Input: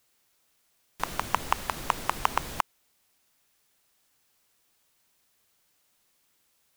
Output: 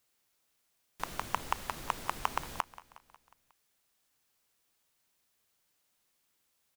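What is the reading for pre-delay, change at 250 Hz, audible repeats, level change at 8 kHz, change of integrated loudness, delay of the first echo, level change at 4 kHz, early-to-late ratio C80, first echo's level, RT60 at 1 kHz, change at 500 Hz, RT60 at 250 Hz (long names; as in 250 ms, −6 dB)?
no reverb audible, −6.5 dB, 4, −6.5 dB, −6.5 dB, 181 ms, −6.5 dB, no reverb audible, −18.5 dB, no reverb audible, −6.5 dB, no reverb audible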